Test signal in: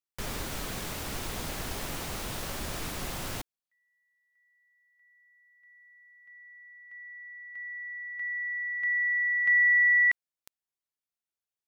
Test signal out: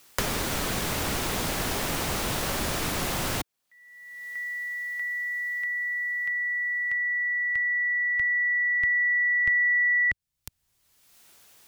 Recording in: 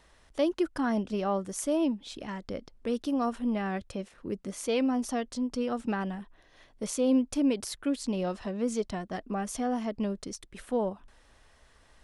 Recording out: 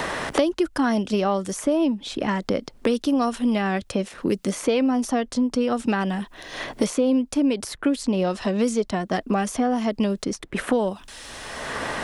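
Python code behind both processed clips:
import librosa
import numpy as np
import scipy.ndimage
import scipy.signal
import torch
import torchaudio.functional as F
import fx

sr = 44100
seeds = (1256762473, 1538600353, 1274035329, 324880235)

y = fx.low_shelf(x, sr, hz=67.0, db=-5.5)
y = fx.band_squash(y, sr, depth_pct=100)
y = F.gain(torch.from_numpy(y), 7.5).numpy()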